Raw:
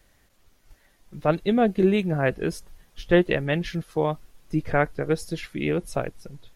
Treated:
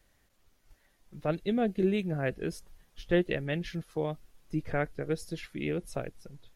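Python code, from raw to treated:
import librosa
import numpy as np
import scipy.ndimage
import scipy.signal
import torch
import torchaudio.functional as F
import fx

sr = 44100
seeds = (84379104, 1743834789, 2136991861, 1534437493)

y = fx.dynamic_eq(x, sr, hz=1000.0, q=1.6, threshold_db=-39.0, ratio=4.0, max_db=-7)
y = y * 10.0 ** (-7.0 / 20.0)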